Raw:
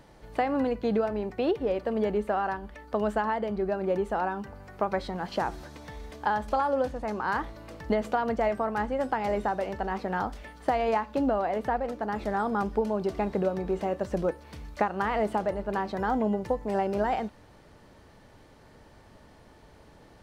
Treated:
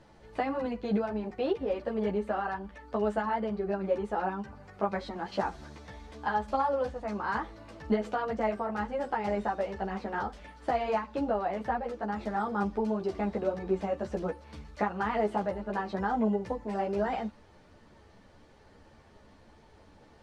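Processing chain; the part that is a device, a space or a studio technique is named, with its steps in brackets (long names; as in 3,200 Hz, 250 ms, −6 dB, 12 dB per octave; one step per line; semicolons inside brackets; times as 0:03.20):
string-machine ensemble chorus (string-ensemble chorus; low-pass filter 8,000 Hz 12 dB per octave)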